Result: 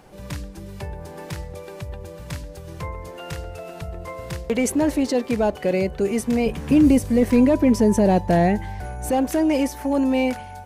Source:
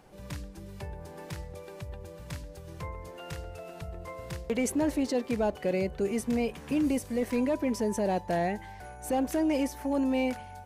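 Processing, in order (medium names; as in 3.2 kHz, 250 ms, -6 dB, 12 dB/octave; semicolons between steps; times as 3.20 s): 6.46–9.10 s: bass shelf 280 Hz +10.5 dB; trim +7.5 dB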